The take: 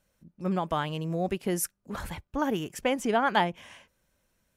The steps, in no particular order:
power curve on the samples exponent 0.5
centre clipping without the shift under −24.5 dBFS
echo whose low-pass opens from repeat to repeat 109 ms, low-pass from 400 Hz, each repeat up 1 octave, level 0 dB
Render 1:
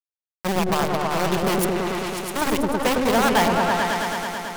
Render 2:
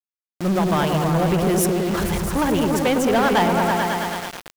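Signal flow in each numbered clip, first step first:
centre clipping without the shift, then echo whose low-pass opens from repeat to repeat, then power curve on the samples
echo whose low-pass opens from repeat to repeat, then power curve on the samples, then centre clipping without the shift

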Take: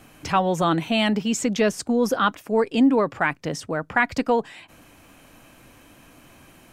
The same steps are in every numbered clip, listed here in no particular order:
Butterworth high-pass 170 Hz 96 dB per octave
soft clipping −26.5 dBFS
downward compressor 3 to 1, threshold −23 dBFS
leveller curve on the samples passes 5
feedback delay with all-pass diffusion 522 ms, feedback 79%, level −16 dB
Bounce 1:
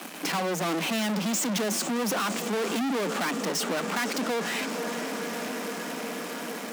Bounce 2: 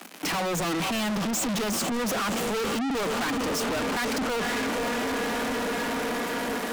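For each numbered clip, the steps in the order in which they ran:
downward compressor, then leveller curve on the samples, then feedback delay with all-pass diffusion, then soft clipping, then Butterworth high-pass
feedback delay with all-pass diffusion, then leveller curve on the samples, then Butterworth high-pass, then soft clipping, then downward compressor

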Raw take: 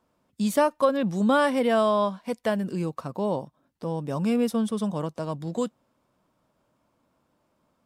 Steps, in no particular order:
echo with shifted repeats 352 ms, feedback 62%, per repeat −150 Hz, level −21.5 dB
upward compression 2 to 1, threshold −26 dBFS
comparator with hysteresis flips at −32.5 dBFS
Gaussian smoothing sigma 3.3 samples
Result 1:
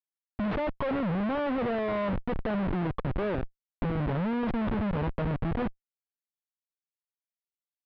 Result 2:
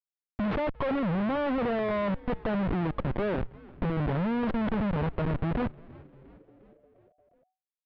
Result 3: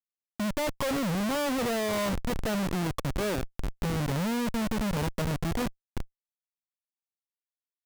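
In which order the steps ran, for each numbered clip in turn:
upward compression, then echo with shifted repeats, then comparator with hysteresis, then Gaussian smoothing
upward compression, then comparator with hysteresis, then Gaussian smoothing, then echo with shifted repeats
echo with shifted repeats, then Gaussian smoothing, then upward compression, then comparator with hysteresis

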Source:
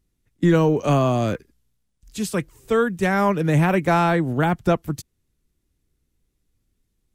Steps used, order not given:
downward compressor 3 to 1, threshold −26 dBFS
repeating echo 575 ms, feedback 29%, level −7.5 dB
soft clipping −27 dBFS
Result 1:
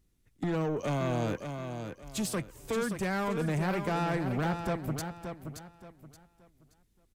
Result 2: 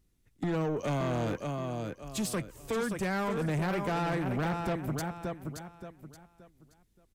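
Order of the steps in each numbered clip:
downward compressor, then soft clipping, then repeating echo
downward compressor, then repeating echo, then soft clipping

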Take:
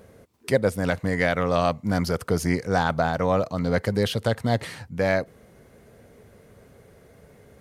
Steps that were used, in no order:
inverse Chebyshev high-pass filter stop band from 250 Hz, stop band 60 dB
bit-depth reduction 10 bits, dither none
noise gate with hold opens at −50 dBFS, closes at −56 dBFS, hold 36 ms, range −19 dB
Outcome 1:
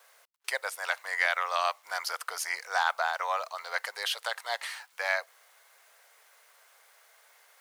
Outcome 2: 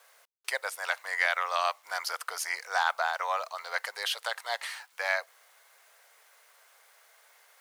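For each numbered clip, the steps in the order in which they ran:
bit-depth reduction, then noise gate with hold, then inverse Chebyshev high-pass filter
noise gate with hold, then bit-depth reduction, then inverse Chebyshev high-pass filter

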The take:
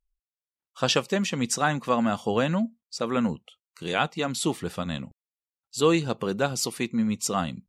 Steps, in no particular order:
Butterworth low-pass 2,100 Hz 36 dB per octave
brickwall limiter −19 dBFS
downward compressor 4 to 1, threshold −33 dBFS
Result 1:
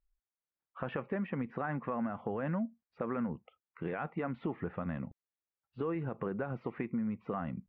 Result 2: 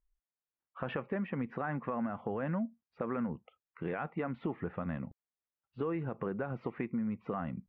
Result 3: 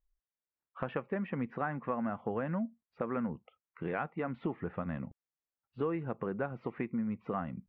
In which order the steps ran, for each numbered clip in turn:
brickwall limiter, then Butterworth low-pass, then downward compressor
Butterworth low-pass, then brickwall limiter, then downward compressor
Butterworth low-pass, then downward compressor, then brickwall limiter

